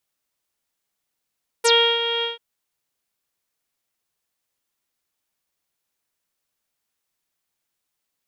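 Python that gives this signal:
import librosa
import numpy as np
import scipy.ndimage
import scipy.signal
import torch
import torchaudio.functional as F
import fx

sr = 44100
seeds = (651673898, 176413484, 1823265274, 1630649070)

y = fx.sub_voice(sr, note=70, wave='saw', cutoff_hz=3300.0, q=10.0, env_oct=2.0, env_s=0.07, attack_ms=15.0, decay_s=0.33, sustain_db=-10.0, release_s=0.15, note_s=0.59, slope=24)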